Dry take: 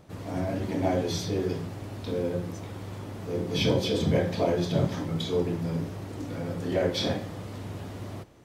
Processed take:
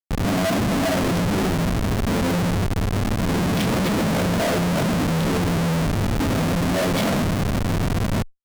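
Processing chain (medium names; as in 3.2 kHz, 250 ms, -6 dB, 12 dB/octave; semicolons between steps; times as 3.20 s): small resonant body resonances 210/650/1200/2200 Hz, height 14 dB, ringing for 30 ms; Schmitt trigger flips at -28 dBFS; Chebyshev shaper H 5 -17 dB, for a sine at -15.5 dBFS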